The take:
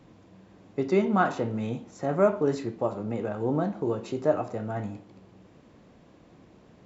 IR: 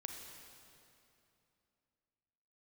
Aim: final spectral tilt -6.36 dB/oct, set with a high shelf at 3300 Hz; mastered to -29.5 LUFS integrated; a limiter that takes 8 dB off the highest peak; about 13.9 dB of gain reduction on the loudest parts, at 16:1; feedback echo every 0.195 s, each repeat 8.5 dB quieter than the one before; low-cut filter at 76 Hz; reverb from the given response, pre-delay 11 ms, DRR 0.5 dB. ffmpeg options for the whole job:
-filter_complex "[0:a]highpass=76,highshelf=f=3.3k:g=5.5,acompressor=threshold=-30dB:ratio=16,alimiter=level_in=4dB:limit=-24dB:level=0:latency=1,volume=-4dB,aecho=1:1:195|390|585|780:0.376|0.143|0.0543|0.0206,asplit=2[a][b];[1:a]atrim=start_sample=2205,adelay=11[c];[b][c]afir=irnorm=-1:irlink=0,volume=2dB[d];[a][d]amix=inputs=2:normalize=0,volume=6dB"

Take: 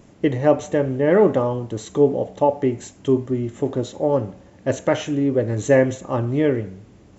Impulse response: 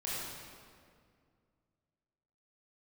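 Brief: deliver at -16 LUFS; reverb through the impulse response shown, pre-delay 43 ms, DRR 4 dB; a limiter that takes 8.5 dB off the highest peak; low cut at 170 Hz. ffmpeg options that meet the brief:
-filter_complex "[0:a]highpass=170,alimiter=limit=-11dB:level=0:latency=1,asplit=2[a][b];[1:a]atrim=start_sample=2205,adelay=43[c];[b][c]afir=irnorm=-1:irlink=0,volume=-8dB[d];[a][d]amix=inputs=2:normalize=0,volume=6dB"

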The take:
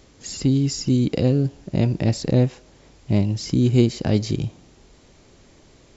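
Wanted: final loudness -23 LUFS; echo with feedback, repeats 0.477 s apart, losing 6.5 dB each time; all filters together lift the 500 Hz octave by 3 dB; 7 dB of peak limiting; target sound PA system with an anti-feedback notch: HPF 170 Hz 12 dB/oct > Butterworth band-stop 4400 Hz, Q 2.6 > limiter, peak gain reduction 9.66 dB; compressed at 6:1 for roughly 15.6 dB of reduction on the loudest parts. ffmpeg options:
-af "equalizer=f=500:t=o:g=4,acompressor=threshold=-28dB:ratio=6,alimiter=level_in=1.5dB:limit=-24dB:level=0:latency=1,volume=-1.5dB,highpass=170,asuperstop=centerf=4400:order=8:qfactor=2.6,aecho=1:1:477|954|1431|1908|2385|2862:0.473|0.222|0.105|0.0491|0.0231|0.0109,volume=18.5dB,alimiter=limit=-13dB:level=0:latency=1"

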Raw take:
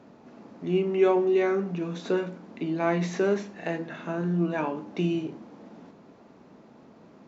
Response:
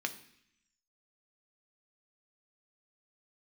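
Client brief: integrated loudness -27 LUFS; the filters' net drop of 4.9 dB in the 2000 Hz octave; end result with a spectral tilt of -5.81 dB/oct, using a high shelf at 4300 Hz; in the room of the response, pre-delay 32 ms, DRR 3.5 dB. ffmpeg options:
-filter_complex "[0:a]equalizer=f=2k:t=o:g=-6,highshelf=f=4.3k:g=-4,asplit=2[a][b];[1:a]atrim=start_sample=2205,adelay=32[c];[b][c]afir=irnorm=-1:irlink=0,volume=-6.5dB[d];[a][d]amix=inputs=2:normalize=0,volume=-1dB"

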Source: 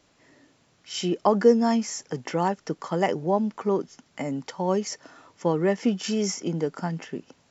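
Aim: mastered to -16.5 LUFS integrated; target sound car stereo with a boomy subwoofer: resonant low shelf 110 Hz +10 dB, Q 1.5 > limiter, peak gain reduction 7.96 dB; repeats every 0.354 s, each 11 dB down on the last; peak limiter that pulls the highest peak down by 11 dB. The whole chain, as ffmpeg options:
-af "alimiter=limit=-18dB:level=0:latency=1,lowshelf=f=110:t=q:w=1.5:g=10,aecho=1:1:354|708|1062:0.282|0.0789|0.0221,volume=17.5dB,alimiter=limit=-6.5dB:level=0:latency=1"

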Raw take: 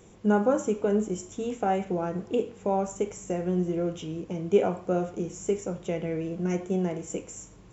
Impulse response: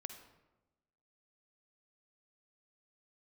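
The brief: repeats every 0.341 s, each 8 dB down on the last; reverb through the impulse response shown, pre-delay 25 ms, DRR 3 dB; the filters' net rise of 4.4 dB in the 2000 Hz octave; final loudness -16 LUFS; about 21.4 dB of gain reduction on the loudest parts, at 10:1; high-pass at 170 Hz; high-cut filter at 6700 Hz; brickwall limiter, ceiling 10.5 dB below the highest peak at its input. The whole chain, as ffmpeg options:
-filter_complex "[0:a]highpass=170,lowpass=6.7k,equalizer=f=2k:t=o:g=6.5,acompressor=threshold=-38dB:ratio=10,alimiter=level_in=11dB:limit=-24dB:level=0:latency=1,volume=-11dB,aecho=1:1:341|682|1023|1364|1705:0.398|0.159|0.0637|0.0255|0.0102,asplit=2[a][b];[1:a]atrim=start_sample=2205,adelay=25[c];[b][c]afir=irnorm=-1:irlink=0,volume=0.5dB[d];[a][d]amix=inputs=2:normalize=0,volume=26.5dB"

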